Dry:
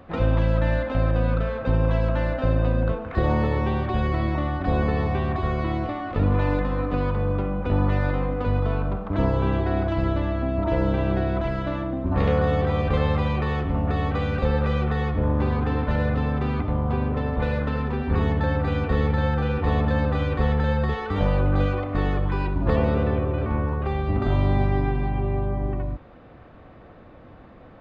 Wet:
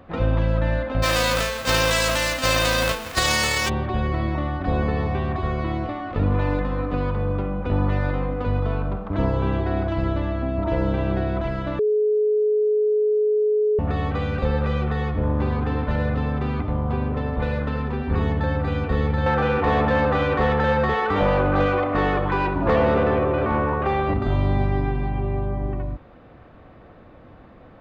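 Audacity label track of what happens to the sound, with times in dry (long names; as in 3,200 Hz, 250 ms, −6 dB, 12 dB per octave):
1.020000	3.680000	spectral envelope flattened exponent 0.3
11.790000	13.790000	beep over 424 Hz −16.5 dBFS
19.260000	24.140000	mid-hump overdrive drive 19 dB, tone 1,600 Hz, clips at −8.5 dBFS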